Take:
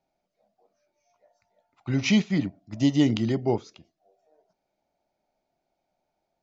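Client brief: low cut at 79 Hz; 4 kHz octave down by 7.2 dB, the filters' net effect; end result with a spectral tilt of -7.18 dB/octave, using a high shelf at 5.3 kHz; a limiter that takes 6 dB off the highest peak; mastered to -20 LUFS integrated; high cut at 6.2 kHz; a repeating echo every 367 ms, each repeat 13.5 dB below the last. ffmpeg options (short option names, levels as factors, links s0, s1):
-af "highpass=79,lowpass=6200,equalizer=f=4000:t=o:g=-7,highshelf=f=5300:g=-8,alimiter=limit=0.158:level=0:latency=1,aecho=1:1:367|734:0.211|0.0444,volume=2.37"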